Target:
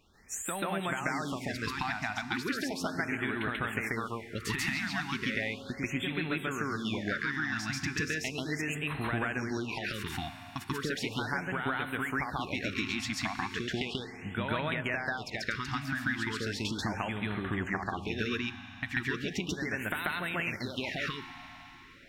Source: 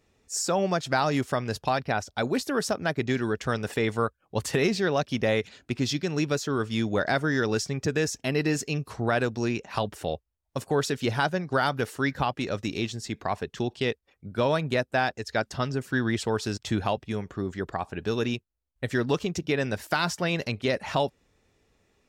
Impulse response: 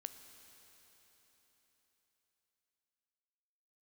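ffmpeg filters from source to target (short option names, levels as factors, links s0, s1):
-filter_complex "[0:a]equalizer=f=125:t=o:w=1:g=-6,equalizer=f=500:t=o:w=1:g=-9,equalizer=f=2000:t=o:w=1:g=8,equalizer=f=8000:t=o:w=1:g=-7,acompressor=threshold=0.0141:ratio=12,asplit=2[s0][s1];[1:a]atrim=start_sample=2205,adelay=138[s2];[s1][s2]afir=irnorm=-1:irlink=0,volume=2.24[s3];[s0][s3]amix=inputs=2:normalize=0,afftfilt=real='re*(1-between(b*sr/1024,430*pow(6000/430,0.5+0.5*sin(2*PI*0.36*pts/sr))/1.41,430*pow(6000/430,0.5+0.5*sin(2*PI*0.36*pts/sr))*1.41))':imag='im*(1-between(b*sr/1024,430*pow(6000/430,0.5+0.5*sin(2*PI*0.36*pts/sr))/1.41,430*pow(6000/430,0.5+0.5*sin(2*PI*0.36*pts/sr))*1.41))':win_size=1024:overlap=0.75,volume=1.58"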